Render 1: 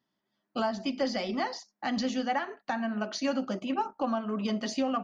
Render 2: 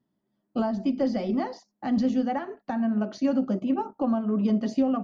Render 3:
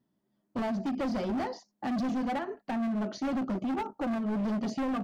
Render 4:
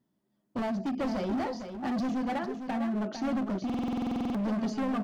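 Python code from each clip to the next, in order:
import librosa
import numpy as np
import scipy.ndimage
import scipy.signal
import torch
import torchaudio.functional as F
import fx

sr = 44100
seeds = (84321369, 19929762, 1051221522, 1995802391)

y1 = fx.tilt_shelf(x, sr, db=9.5, hz=750.0)
y2 = np.clip(10.0 ** (28.5 / 20.0) * y1, -1.0, 1.0) / 10.0 ** (28.5 / 20.0)
y3 = y2 + 10.0 ** (-8.5 / 20.0) * np.pad(y2, (int(453 * sr / 1000.0), 0))[:len(y2)]
y3 = fx.buffer_glitch(y3, sr, at_s=(3.65,), block=2048, repeats=14)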